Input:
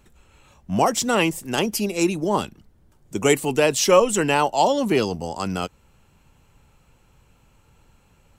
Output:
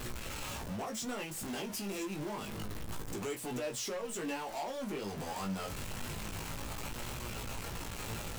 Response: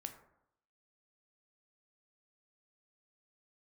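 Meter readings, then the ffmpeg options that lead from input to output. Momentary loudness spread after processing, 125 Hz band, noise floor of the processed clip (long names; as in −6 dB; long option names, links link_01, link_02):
4 LU, −11.0 dB, −43 dBFS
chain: -af "aeval=exprs='val(0)+0.5*0.0944*sgn(val(0))':channel_layout=same,bandreject=frequency=60:width_type=h:width=6,bandreject=frequency=120:width_type=h:width=6,bandreject=frequency=180:width_type=h:width=6,acompressor=threshold=-22dB:ratio=6,flanger=delay=16.5:depth=4.2:speed=0.27,volume=24dB,asoftclip=hard,volume=-24dB,flanger=delay=8.1:depth=2.8:regen=74:speed=0.84:shape=sinusoidal,volume=-6dB"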